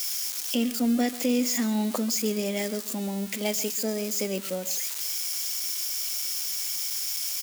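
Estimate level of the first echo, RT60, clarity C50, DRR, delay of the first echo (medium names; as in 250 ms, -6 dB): -17.5 dB, no reverb, no reverb, no reverb, 138 ms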